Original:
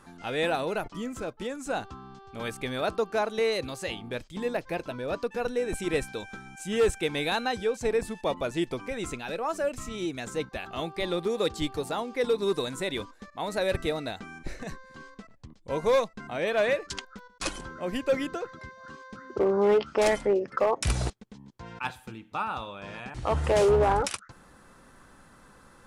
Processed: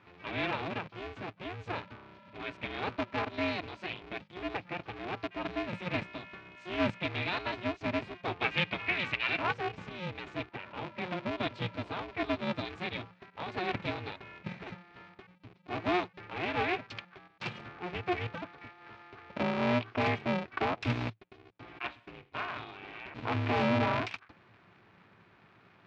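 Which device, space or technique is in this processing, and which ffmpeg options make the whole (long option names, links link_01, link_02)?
ring modulator pedal into a guitar cabinet: -filter_complex "[0:a]asettb=1/sr,asplit=3[link_01][link_02][link_03];[link_01]atrim=end=8.404[link_04];[link_02]atrim=start=8.4:end=9.54,asetpts=PTS-STARTPTS,afade=type=in:duration=0.004:curve=qsin,afade=type=out:start_time=1.136:duration=0.004:curve=qsin,equalizer=frequency=2400:width_type=o:width=2.1:gain=13.5[link_05];[link_03]atrim=start=9.536[link_06];[link_04][link_05]acrossfade=duration=0.004:curve1=hsin:curve2=qsin[link_07];[link_07][link_06]acrossfade=duration=0.004:curve1=qsin:curve2=hsin,asettb=1/sr,asplit=3[link_08][link_09][link_10];[link_08]atrim=end=10.504[link_11];[link_09]atrim=start=10.5:end=11.32,asetpts=PTS-STARTPTS,afade=type=in:duration=0.004:curve=qsin,afade=type=out:start_time=0.816:duration=0.004:curve=qsin,lowpass=2300[link_12];[link_10]atrim=start=11.316[link_13];[link_11][link_12]acrossfade=duration=0.004:curve1=hsin:curve2=qsin[link_14];[link_14][link_13]acrossfade=duration=0.004:curve1=qsin:curve2=hsin,aeval=exprs='val(0)*sgn(sin(2*PI*180*n/s))':channel_layout=same,highpass=97,equalizer=frequency=110:width_type=q:width=4:gain=9,equalizer=frequency=520:width_type=q:width=4:gain=-4,equalizer=frequency=2400:width_type=q:width=4:gain=7,lowpass=frequency=4000:width=0.5412,lowpass=frequency=4000:width=1.3066,volume=-6.5dB"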